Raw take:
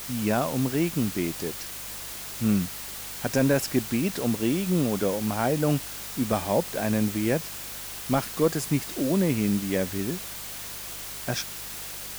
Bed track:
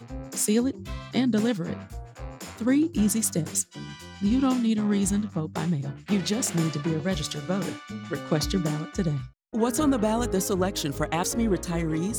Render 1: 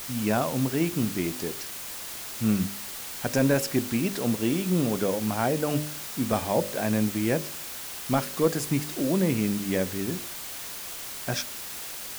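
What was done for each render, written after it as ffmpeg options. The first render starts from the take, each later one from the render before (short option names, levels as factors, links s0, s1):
-af "bandreject=f=50:t=h:w=4,bandreject=f=100:t=h:w=4,bandreject=f=150:t=h:w=4,bandreject=f=200:t=h:w=4,bandreject=f=250:t=h:w=4,bandreject=f=300:t=h:w=4,bandreject=f=350:t=h:w=4,bandreject=f=400:t=h:w=4,bandreject=f=450:t=h:w=4,bandreject=f=500:t=h:w=4,bandreject=f=550:t=h:w=4,bandreject=f=600:t=h:w=4"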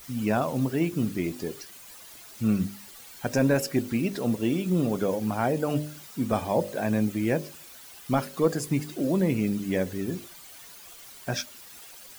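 -af "afftdn=nr=12:nf=-38"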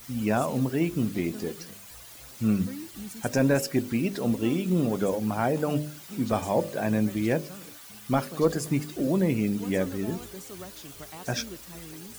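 -filter_complex "[1:a]volume=0.133[s0];[0:a][s0]amix=inputs=2:normalize=0"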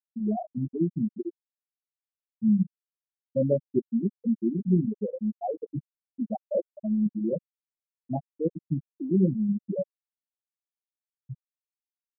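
-af "afftfilt=real='re*gte(hypot(re,im),0.398)':imag='im*gte(hypot(re,im),0.398)':win_size=1024:overlap=0.75,aecho=1:1:5.3:0.56"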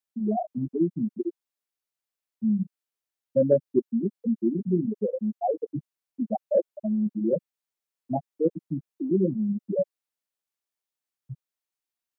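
-filter_complex "[0:a]acrossover=split=270[s0][s1];[s0]alimiter=level_in=1.5:limit=0.0631:level=0:latency=1:release=148,volume=0.668[s2];[s1]acontrast=29[s3];[s2][s3]amix=inputs=2:normalize=0"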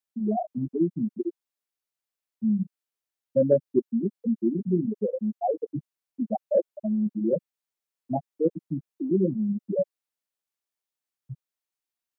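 -af anull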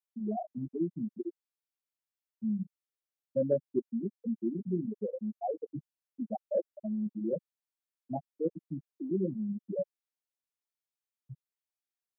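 -af "volume=0.398"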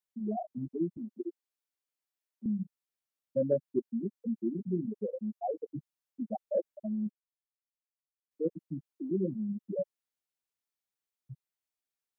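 -filter_complex "[0:a]asettb=1/sr,asplit=3[s0][s1][s2];[s0]atrim=end=0.974[s3];[s1]atrim=start=0.97:end=2.46,asetpts=PTS-STARTPTS,afade=t=in:d=0.004:c=qsin,afade=t=out:st=1.486:d=0.004:c=qsin,highpass=f=250:w=0.5412,highpass=f=250:w=1.3066[s4];[s2]atrim=start=2.456[s5];[s3][s4]acrossfade=d=0.004:c1=hsin:c2=qsin[s6];[s6][s5]acrossfade=d=0.004:c1=qsin:c2=hsin,asplit=3[s7][s8][s9];[s7]atrim=end=7.11,asetpts=PTS-STARTPTS,afade=t=out:st=7.106:d=0.004:c=hsin[s10];[s8]atrim=start=7.11:end=8.31,asetpts=PTS-STARTPTS,volume=0[s11];[s9]atrim=start=8.31,asetpts=PTS-STARTPTS,afade=t=in:d=0.004:c=hsin[s12];[s10][s11][s12]concat=n=3:v=0:a=1"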